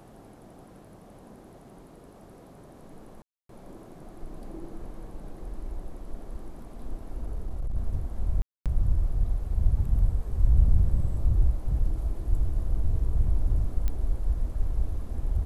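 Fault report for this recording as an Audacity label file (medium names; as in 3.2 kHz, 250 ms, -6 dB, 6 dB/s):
3.220000	3.490000	dropout 273 ms
7.220000	7.780000	clipped -26 dBFS
8.420000	8.660000	dropout 237 ms
13.880000	13.880000	pop -17 dBFS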